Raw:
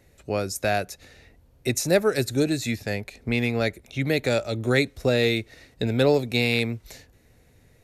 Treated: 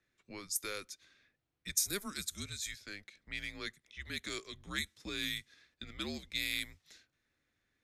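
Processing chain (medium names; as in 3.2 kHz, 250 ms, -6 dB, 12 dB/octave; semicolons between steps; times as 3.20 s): differentiator; level-controlled noise filter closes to 2.6 kHz, open at -29.5 dBFS; bass shelf 420 Hz +9 dB; frequency shift -200 Hz; trim -3 dB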